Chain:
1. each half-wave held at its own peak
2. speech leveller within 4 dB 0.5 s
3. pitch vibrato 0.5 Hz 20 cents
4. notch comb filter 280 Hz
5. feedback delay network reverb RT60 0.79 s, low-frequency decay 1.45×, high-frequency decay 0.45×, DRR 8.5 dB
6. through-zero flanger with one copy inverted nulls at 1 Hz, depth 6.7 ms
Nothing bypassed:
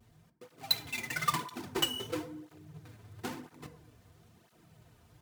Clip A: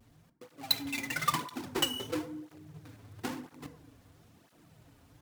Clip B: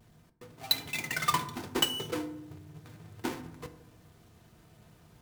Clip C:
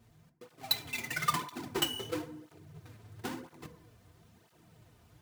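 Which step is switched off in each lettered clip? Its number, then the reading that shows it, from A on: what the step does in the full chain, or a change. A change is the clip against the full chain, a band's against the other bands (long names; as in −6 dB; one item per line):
4, 250 Hz band +3.0 dB
6, change in integrated loudness +2.5 LU
3, 4 kHz band −1.5 dB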